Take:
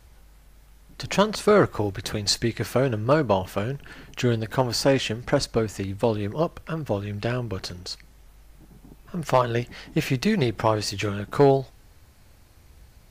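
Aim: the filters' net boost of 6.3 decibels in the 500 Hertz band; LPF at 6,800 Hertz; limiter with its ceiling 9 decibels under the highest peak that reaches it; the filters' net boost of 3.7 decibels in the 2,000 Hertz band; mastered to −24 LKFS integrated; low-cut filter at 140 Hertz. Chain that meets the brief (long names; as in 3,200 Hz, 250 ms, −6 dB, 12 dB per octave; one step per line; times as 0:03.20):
high-pass filter 140 Hz
low-pass filter 6,800 Hz
parametric band 500 Hz +7.5 dB
parametric band 2,000 Hz +4.5 dB
level −0.5 dB
brickwall limiter −10.5 dBFS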